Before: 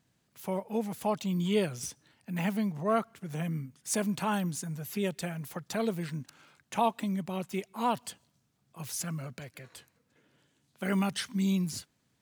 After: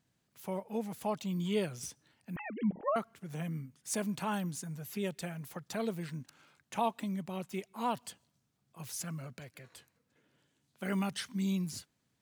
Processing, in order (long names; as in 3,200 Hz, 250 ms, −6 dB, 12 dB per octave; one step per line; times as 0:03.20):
0:02.36–0:02.96: three sine waves on the formant tracks
level −4.5 dB